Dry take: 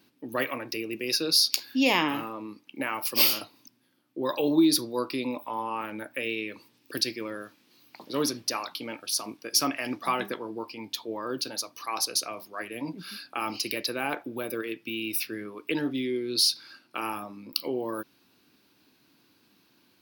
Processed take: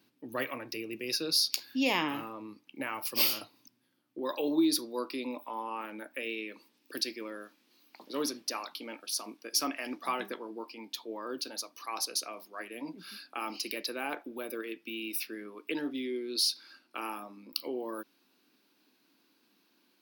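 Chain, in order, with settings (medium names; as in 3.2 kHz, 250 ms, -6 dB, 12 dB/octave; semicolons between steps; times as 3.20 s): high-pass 63 Hz 24 dB/octave, from 4.19 s 200 Hz; trim -5.5 dB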